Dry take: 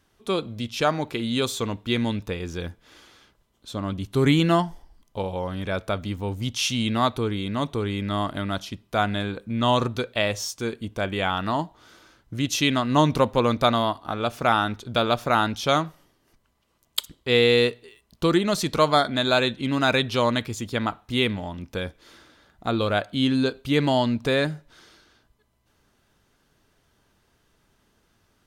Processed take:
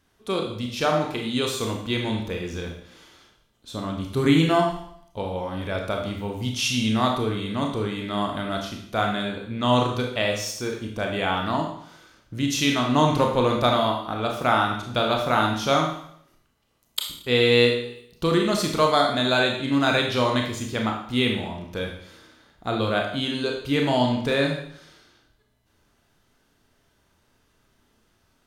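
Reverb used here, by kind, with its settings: Schroeder reverb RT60 0.66 s, combs from 25 ms, DRR 1 dB; gain -2 dB

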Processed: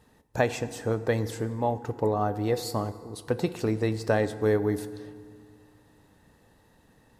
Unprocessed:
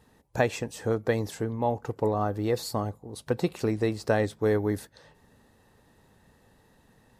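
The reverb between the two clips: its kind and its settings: FDN reverb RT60 2 s, low-frequency decay 1.25×, high-frequency decay 0.65×, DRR 12.5 dB

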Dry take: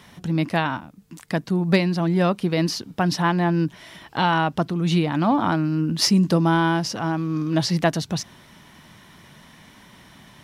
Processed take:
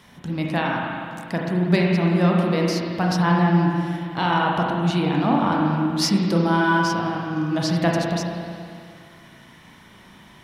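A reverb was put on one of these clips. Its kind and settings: spring tank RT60 2.3 s, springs 35/39 ms, chirp 55 ms, DRR -2 dB; gain -3 dB

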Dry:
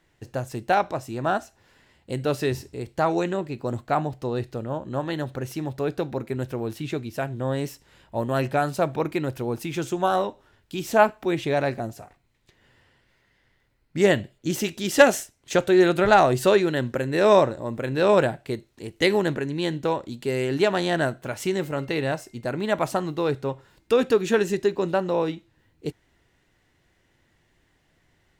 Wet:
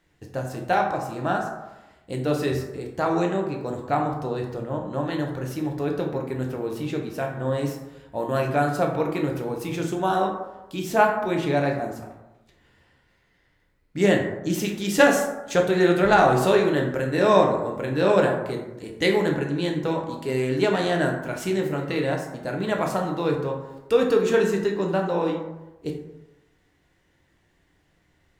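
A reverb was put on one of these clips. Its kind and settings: plate-style reverb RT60 1 s, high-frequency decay 0.4×, DRR 1 dB; gain -2.5 dB

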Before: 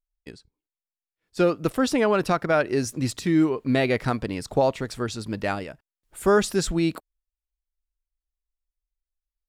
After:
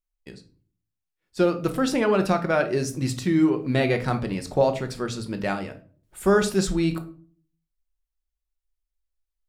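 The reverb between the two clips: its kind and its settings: shoebox room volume 350 m³, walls furnished, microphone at 1 m; gain -1.5 dB

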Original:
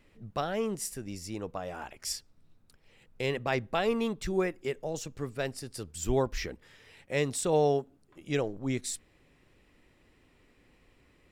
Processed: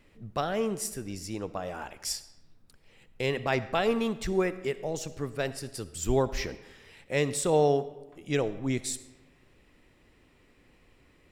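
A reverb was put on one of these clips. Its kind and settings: digital reverb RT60 1.1 s, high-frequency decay 0.7×, pre-delay 25 ms, DRR 14.5 dB; gain +2 dB

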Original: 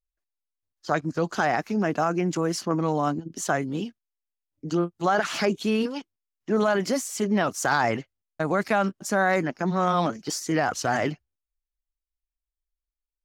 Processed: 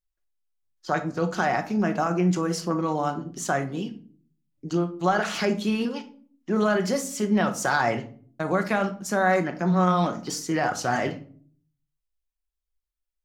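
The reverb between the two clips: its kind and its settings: shoebox room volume 420 m³, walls furnished, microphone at 0.99 m; gain -1.5 dB

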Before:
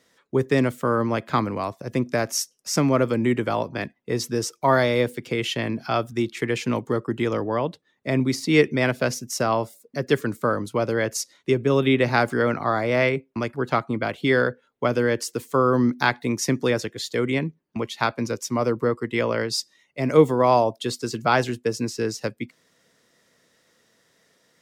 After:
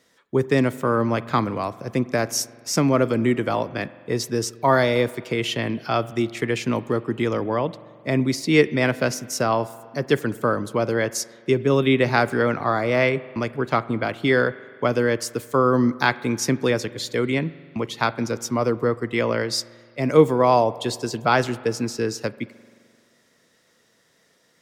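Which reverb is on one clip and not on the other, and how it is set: spring tank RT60 2 s, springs 43 ms, chirp 25 ms, DRR 17.5 dB; gain +1 dB

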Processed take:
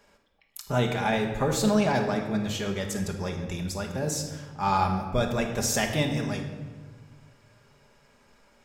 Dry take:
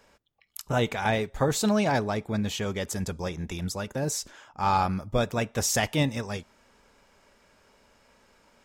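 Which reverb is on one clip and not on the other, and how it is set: shoebox room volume 1200 m³, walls mixed, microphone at 1.3 m; gain -2 dB

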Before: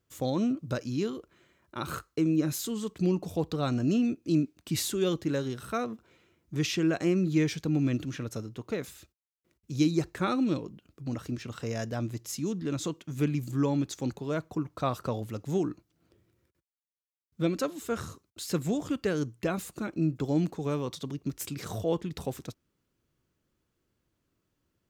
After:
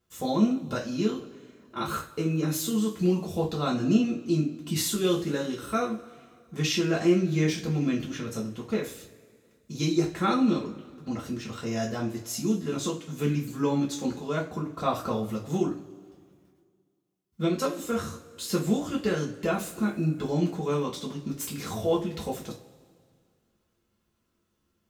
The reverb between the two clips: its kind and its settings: two-slope reverb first 0.29 s, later 2.1 s, from -22 dB, DRR -5 dB; gain -2.5 dB

